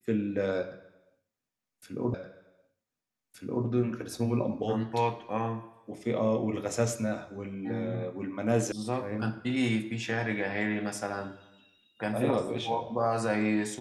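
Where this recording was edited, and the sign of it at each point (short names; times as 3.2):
2.14 repeat of the last 1.52 s
8.72 sound cut off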